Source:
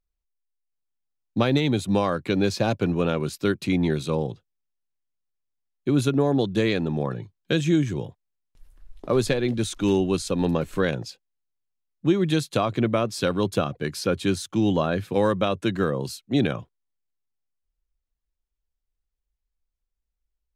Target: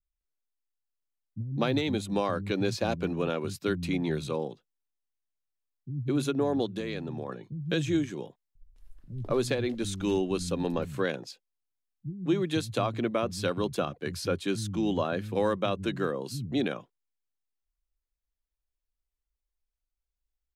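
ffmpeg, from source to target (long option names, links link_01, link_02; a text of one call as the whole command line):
ffmpeg -i in.wav -filter_complex "[0:a]asettb=1/sr,asplit=3[link_01][link_02][link_03];[link_01]atrim=end=6.444[link_04];[link_02]atrim=start=6.44:end=7.08,asetpts=PTS-STARTPTS,afade=type=in:duration=0.004:curve=qsin,afade=type=out:start_time=0.636:duration=0.004:curve=qsin,acompressor=threshold=-25dB:ratio=6[link_05];[link_03]atrim=start=7.076[link_06];[link_04][link_05]acrossfade=duration=0.004:curve1=hsin:curve2=qsin[link_07];[link_07][link_06]acrossfade=duration=0.004:curve1=qsin:curve2=hsin,acrossover=split=170[link_08][link_09];[link_09]adelay=210[link_10];[link_08][link_10]amix=inputs=2:normalize=0,volume=-5dB" out.wav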